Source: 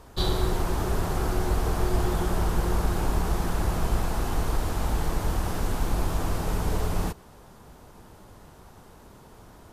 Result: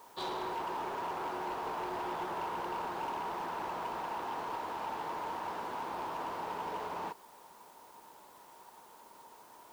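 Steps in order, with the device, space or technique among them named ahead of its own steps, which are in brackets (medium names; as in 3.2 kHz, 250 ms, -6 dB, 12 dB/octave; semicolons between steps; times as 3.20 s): drive-through speaker (band-pass 390–3300 Hz; peaking EQ 940 Hz +12 dB 0.27 oct; hard clipper -26.5 dBFS, distortion -15 dB; white noise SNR 24 dB); trim -6.5 dB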